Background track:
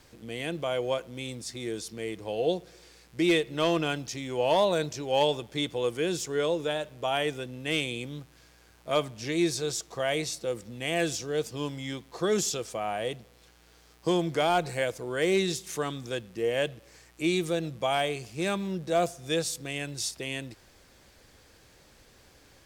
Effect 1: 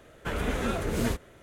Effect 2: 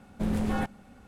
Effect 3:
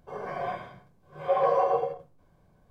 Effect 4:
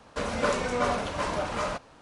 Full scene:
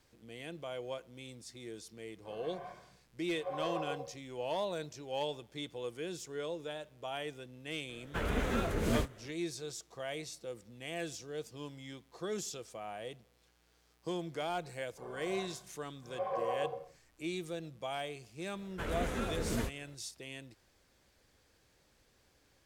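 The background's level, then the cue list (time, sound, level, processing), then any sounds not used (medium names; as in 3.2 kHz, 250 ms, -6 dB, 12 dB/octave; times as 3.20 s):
background track -12 dB
2.17 s: add 3 -15 dB
7.89 s: add 1 -3.5 dB + decimation joined by straight lines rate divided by 2×
14.90 s: add 3 -12.5 dB
18.53 s: add 1 -7 dB
not used: 2, 4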